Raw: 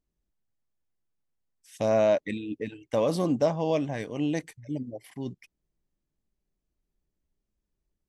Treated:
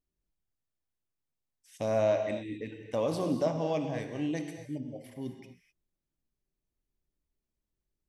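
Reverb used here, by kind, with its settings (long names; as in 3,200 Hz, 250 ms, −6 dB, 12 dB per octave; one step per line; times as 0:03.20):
reverb whose tail is shaped and stops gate 280 ms flat, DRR 5 dB
level −5.5 dB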